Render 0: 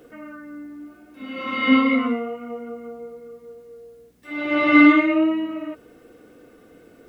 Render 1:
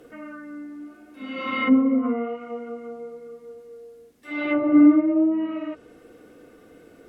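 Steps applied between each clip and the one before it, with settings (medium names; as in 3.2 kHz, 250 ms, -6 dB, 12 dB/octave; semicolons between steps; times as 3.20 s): low-pass that closes with the level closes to 550 Hz, closed at -15.5 dBFS; hum notches 60/120/180/240 Hz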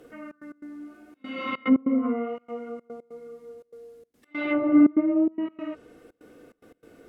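trance gate "xxx.x.xxxxx." 145 bpm -24 dB; trim -2 dB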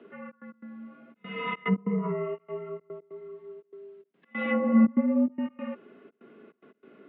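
mistuned SSB -69 Hz 290–3300 Hz; endings held to a fixed fall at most 570 dB/s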